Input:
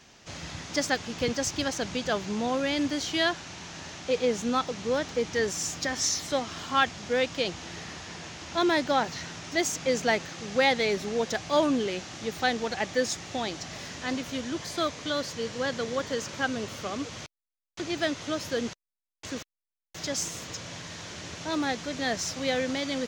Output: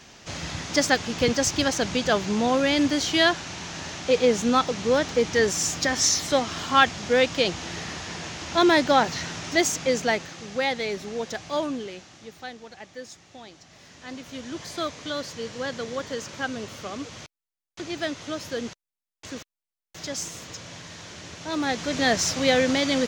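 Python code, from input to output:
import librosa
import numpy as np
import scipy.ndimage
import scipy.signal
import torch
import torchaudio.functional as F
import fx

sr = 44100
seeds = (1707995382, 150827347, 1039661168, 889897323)

y = fx.gain(x, sr, db=fx.line((9.51, 6.0), (10.6, -2.5), (11.5, -2.5), (12.59, -13.0), (13.66, -13.0), (14.62, -1.0), (21.41, -1.0), (21.98, 7.5)))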